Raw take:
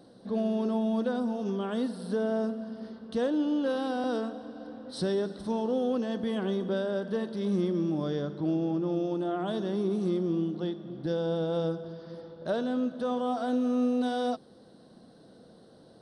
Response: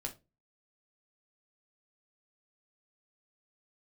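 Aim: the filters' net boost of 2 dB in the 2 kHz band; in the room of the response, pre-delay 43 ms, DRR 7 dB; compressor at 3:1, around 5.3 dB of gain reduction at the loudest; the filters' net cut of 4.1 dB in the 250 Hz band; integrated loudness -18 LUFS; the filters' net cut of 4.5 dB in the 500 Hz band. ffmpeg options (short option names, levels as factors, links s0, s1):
-filter_complex "[0:a]equalizer=f=250:t=o:g=-4,equalizer=f=500:t=o:g=-4.5,equalizer=f=2000:t=o:g=3.5,acompressor=threshold=0.0178:ratio=3,asplit=2[s0][s1];[1:a]atrim=start_sample=2205,adelay=43[s2];[s1][s2]afir=irnorm=-1:irlink=0,volume=0.501[s3];[s0][s3]amix=inputs=2:normalize=0,volume=10"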